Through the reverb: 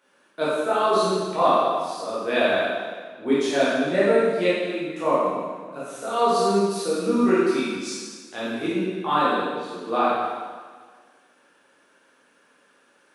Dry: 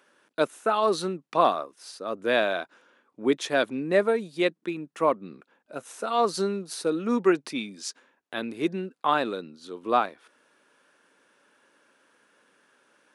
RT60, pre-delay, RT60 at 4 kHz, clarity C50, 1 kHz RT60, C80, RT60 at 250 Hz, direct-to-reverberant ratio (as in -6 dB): 1.6 s, 7 ms, 1.5 s, -3.5 dB, 1.6 s, 0.0 dB, 1.6 s, -10.0 dB